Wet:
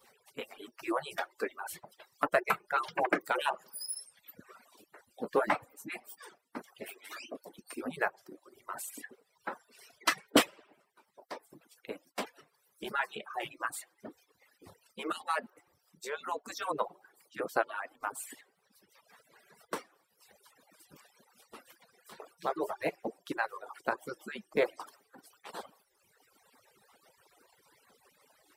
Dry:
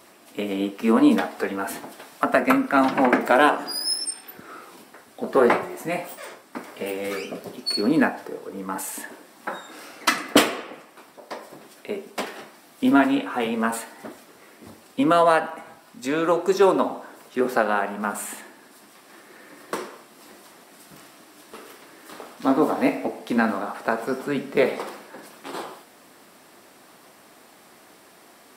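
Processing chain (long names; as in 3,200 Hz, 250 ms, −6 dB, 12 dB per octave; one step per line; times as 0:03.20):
harmonic-percussive split with one part muted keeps percussive
0:06.87–0:07.59: high-pass filter 240 Hz 24 dB per octave
reverb reduction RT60 1.6 s
level −7.5 dB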